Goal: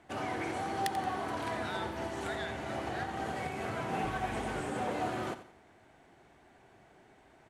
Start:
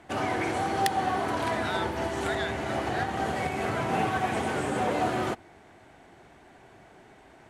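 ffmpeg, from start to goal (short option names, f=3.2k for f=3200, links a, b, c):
-filter_complex "[0:a]asettb=1/sr,asplit=3[a][b][c];[a]atrim=end=4.044[d];[b]atrim=start=4.04:end=4.6,asetpts=PTS-STARTPTS,afade=t=in:d=0.004:c=qsin,afade=t=out:st=0.556:d=0.004:c=qsin,aeval=exprs='val(0)+0.0141*(sin(2*PI*50*n/s)+sin(2*PI*2*50*n/s)/2+sin(2*PI*3*50*n/s)/3+sin(2*PI*4*50*n/s)/4+sin(2*PI*5*50*n/s)/5)':c=same[e];[c]atrim=start=4.596[f];[d][e]acrossfade=d=0.004:c1=hsin:c2=qsin[g];[g][f]acrossfade=d=0.004:c1=qsin:c2=hsin,asplit=2[h][i];[i]aecho=0:1:88|176|264:0.224|0.0784|0.0274[j];[h][j]amix=inputs=2:normalize=0,volume=-7.5dB"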